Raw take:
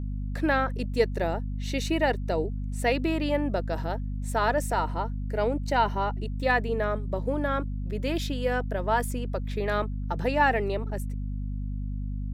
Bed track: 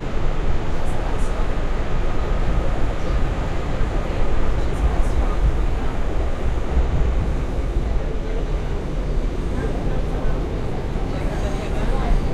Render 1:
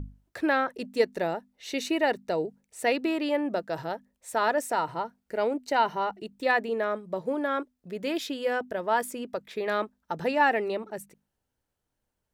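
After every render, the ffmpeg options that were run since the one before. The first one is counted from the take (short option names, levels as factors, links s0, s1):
-af "bandreject=f=50:t=h:w=6,bandreject=f=100:t=h:w=6,bandreject=f=150:t=h:w=6,bandreject=f=200:t=h:w=6,bandreject=f=250:t=h:w=6"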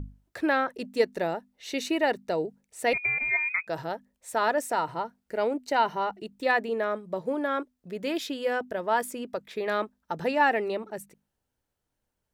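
-filter_complex "[0:a]asettb=1/sr,asplit=3[s0][s1][s2];[s0]atrim=end=2.934[s3];[s1]atrim=start=2.93:end=3.67,asetpts=PTS-STARTPTS,afade=t=in:d=0.004:c=qsin,afade=t=out:st=0.736:d=0.004:c=qsin,lowpass=f=2300:t=q:w=0.5098,lowpass=f=2300:t=q:w=0.6013,lowpass=f=2300:t=q:w=0.9,lowpass=f=2300:t=q:w=2.563,afreqshift=-2700[s4];[s2]atrim=start=3.666[s5];[s3][s4]acrossfade=d=0.004:c1=hsin:c2=qsin[s6];[s6][s5]acrossfade=d=0.004:c1=qsin:c2=hsin"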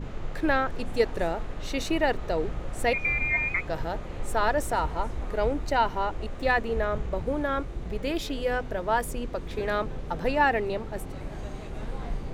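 -filter_complex "[1:a]volume=0.211[s0];[0:a][s0]amix=inputs=2:normalize=0"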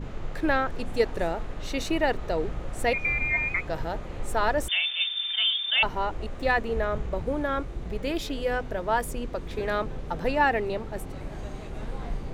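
-filter_complex "[0:a]asettb=1/sr,asplit=3[s0][s1][s2];[s0]atrim=end=4.684[s3];[s1]atrim=start=4.68:end=5.83,asetpts=PTS-STARTPTS,afade=t=in:d=0.004:c=qsin,afade=t=out:st=1.146:d=0.004:c=qsin,lowpass=f=3100:t=q:w=0.5098,lowpass=f=3100:t=q:w=0.6013,lowpass=f=3100:t=q:w=0.9,lowpass=f=3100:t=q:w=2.563,afreqshift=-3600[s4];[s2]atrim=start=5.826[s5];[s3][s4]acrossfade=d=0.004:c1=hsin:c2=qsin[s6];[s6][s5]acrossfade=d=0.004:c1=qsin:c2=hsin"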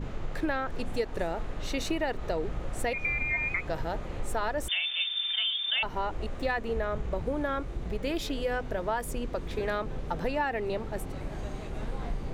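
-af "acompressor=threshold=0.0501:ratio=5"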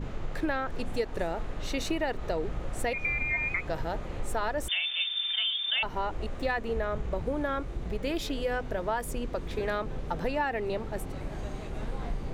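-af anull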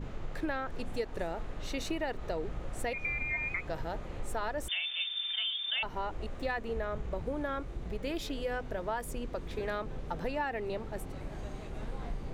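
-af "volume=0.596"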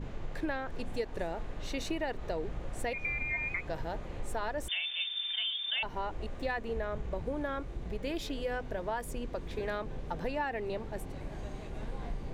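-af "highshelf=f=11000:g=-3.5,bandreject=f=1300:w=13"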